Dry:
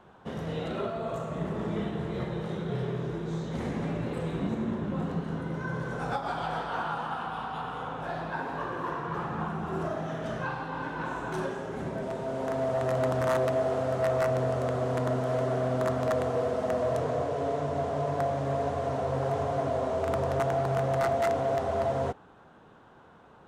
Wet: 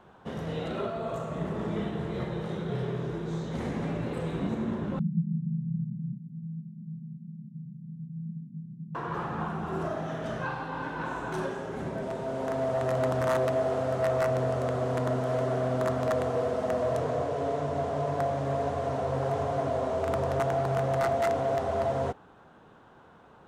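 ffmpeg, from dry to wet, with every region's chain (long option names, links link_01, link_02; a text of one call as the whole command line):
ffmpeg -i in.wav -filter_complex "[0:a]asettb=1/sr,asplit=3[link_01][link_02][link_03];[link_01]atrim=end=4.994[link_04];[link_02]atrim=start=4.99:end=8.95,asetpts=PTS-STARTPTS,afade=type=in:duration=0.004:curve=qsin,afade=type=out:start_time=3.956:duration=0.004:curve=qsin,asuperpass=centerf=170:order=8:qfactor=2.1,acontrast=37[link_05];[link_03]atrim=start=8.946[link_06];[link_04][link_05]acrossfade=duration=0.004:curve1=hsin:curve2=qsin[link_07];[link_07][link_06]acrossfade=duration=0.004:curve1=qsin:curve2=hsin" out.wav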